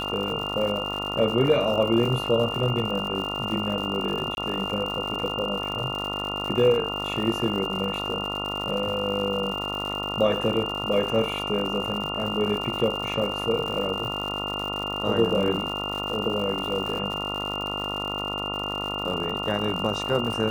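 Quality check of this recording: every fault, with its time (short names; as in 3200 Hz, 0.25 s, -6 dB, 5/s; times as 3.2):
buzz 50 Hz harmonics 28 -33 dBFS
crackle 140/s -31 dBFS
tone 2800 Hz -30 dBFS
4.35–4.37 gap 21 ms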